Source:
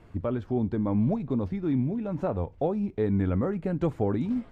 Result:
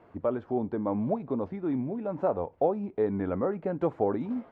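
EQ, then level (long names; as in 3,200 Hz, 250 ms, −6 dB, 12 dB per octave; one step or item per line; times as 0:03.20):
resonant band-pass 720 Hz, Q 0.87
+4.0 dB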